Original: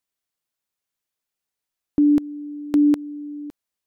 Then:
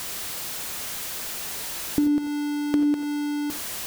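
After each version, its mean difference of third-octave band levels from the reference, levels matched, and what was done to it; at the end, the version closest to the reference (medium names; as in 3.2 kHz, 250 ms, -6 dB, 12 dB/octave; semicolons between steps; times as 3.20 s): 12.5 dB: jump at every zero crossing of -26 dBFS; compression, threshold -19 dBFS, peak gain reduction 6 dB; gated-style reverb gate 110 ms rising, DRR 9 dB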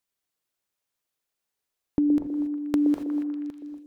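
5.0 dB: compression, threshold -21 dBFS, peak gain reduction 7 dB; on a send: repeats whose band climbs or falls 120 ms, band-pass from 450 Hz, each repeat 0.7 oct, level -2 dB; on the sum: gated-style reverb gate 300 ms rising, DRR 8.5 dB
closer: second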